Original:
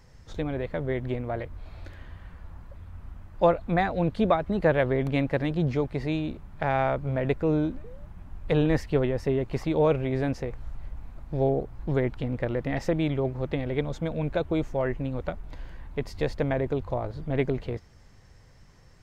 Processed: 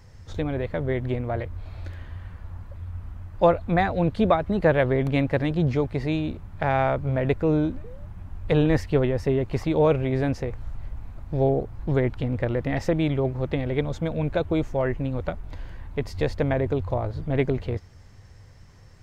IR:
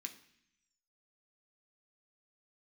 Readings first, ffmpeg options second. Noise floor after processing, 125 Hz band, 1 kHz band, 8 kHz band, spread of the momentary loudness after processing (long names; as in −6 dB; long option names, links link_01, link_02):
−48 dBFS, +4.0 dB, +2.5 dB, can't be measured, 17 LU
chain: -af "equalizer=frequency=94:width=3.9:gain=10,volume=2.5dB"